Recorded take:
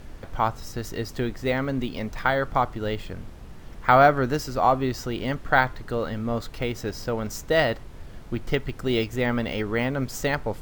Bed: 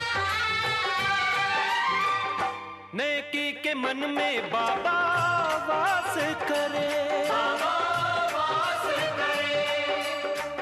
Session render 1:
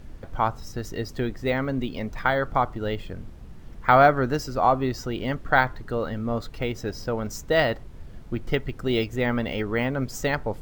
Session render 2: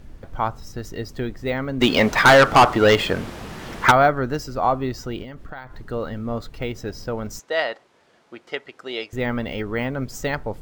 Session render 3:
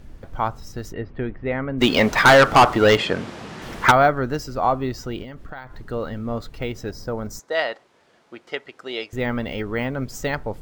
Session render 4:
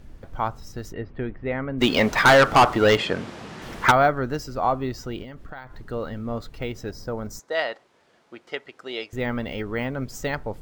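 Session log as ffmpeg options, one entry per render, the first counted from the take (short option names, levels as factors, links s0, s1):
-af "afftdn=nr=6:nf=-42"
-filter_complex "[0:a]asplit=3[s0][s1][s2];[s0]afade=t=out:st=1.8:d=0.02[s3];[s1]asplit=2[s4][s5];[s5]highpass=f=720:p=1,volume=28.2,asoftclip=type=tanh:threshold=0.75[s6];[s4][s6]amix=inputs=2:normalize=0,lowpass=f=7200:p=1,volume=0.501,afade=t=in:st=1.8:d=0.02,afade=t=out:st=3.9:d=0.02[s7];[s2]afade=t=in:st=3.9:d=0.02[s8];[s3][s7][s8]amix=inputs=3:normalize=0,asettb=1/sr,asplit=3[s9][s10][s11];[s9]atrim=end=5.224[s12];[s10]atrim=start=5.22:end=5.78,asetpts=PTS-STARTPTS,afade=t=in:d=0.004:c=qsin,afade=t=out:st=0.556:d=0.004:c=qsin,acompressor=threshold=0.0251:ratio=8:attack=3.2:release=140:knee=1:detection=peak[s13];[s11]atrim=start=5.776[s14];[s12][s13]acrossfade=d=0.004:c1=hsin:c2=qsin[s15];[s15][s14]acrossfade=d=0.004:c1=qsin:c2=hsin,asettb=1/sr,asplit=3[s16][s17][s18];[s16]atrim=end=7.394[s19];[s17]atrim=start=7.39:end=9.13,asetpts=PTS-STARTPTS,afade=t=in:d=0.004:c=qsin,afade=t=out:st=1.736:d=0.004:c=qsin,highpass=540,lowpass=7900[s20];[s18]atrim=start=9.126[s21];[s19][s20]acrossfade=d=0.004:c1=hsin:c2=qsin[s22];[s22][s21]acrossfade=d=0.004:c1=qsin:c2=hsin"
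-filter_complex "[0:a]asplit=3[s0][s1][s2];[s0]afade=t=out:st=0.92:d=0.02[s3];[s1]lowpass=f=2600:w=0.5412,lowpass=f=2600:w=1.3066,afade=t=in:st=0.92:d=0.02,afade=t=out:st=1.77:d=0.02[s4];[s2]afade=t=in:st=1.77:d=0.02[s5];[s3][s4][s5]amix=inputs=3:normalize=0,asettb=1/sr,asplit=3[s6][s7][s8];[s6]atrim=end=2.974[s9];[s7]atrim=start=2.97:end=3.62,asetpts=PTS-STARTPTS,afade=t=in:d=0.004:c=qsin,afade=t=out:st=0.646:d=0.004:c=qsin,highpass=110,lowpass=7700[s10];[s8]atrim=start=3.616[s11];[s9][s10]acrossfade=d=0.004:c1=hsin:c2=qsin[s12];[s12][s11]acrossfade=d=0.004:c1=qsin:c2=hsin,asettb=1/sr,asplit=3[s13][s14][s15];[s13]atrim=end=6.914[s16];[s14]atrim=start=6.91:end=7.55,asetpts=PTS-STARTPTS,afade=t=in:d=0.004:c=qsin,afade=t=out:st=0.636:d=0.004:c=qsin,equalizer=f=2800:t=o:w=0.72:g=-9.5[s17];[s15]atrim=start=7.546[s18];[s16][s17]acrossfade=d=0.004:c1=hsin:c2=qsin[s19];[s19][s18]acrossfade=d=0.004:c1=qsin:c2=hsin"
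-af "volume=0.75"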